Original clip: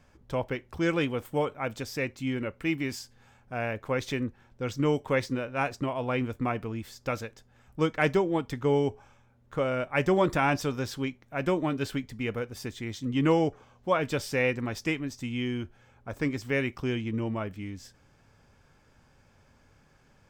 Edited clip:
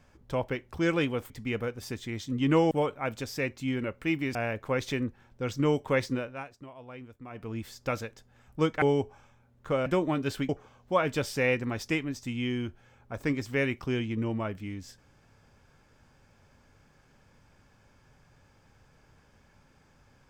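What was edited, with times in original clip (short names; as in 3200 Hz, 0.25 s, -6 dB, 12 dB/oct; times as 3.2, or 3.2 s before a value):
2.94–3.55 cut
5.37–6.78 dip -16 dB, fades 0.28 s
8.02–8.69 cut
9.73–11.41 cut
12.04–13.45 move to 1.3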